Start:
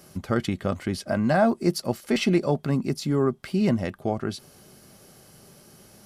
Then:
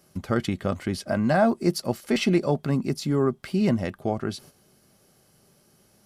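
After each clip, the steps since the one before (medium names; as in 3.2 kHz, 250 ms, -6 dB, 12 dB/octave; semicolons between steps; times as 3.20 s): gate -47 dBFS, range -9 dB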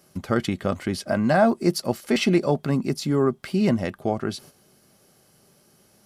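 bass shelf 100 Hz -6 dB; trim +2.5 dB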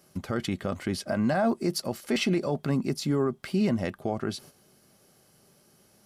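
peak limiter -14.5 dBFS, peak gain reduction 7 dB; trim -2.5 dB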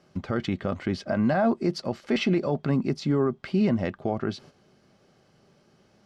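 distance through air 150 m; trim +2.5 dB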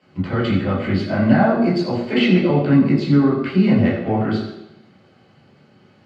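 reverberation RT60 0.85 s, pre-delay 14 ms, DRR -6 dB; trim -7.5 dB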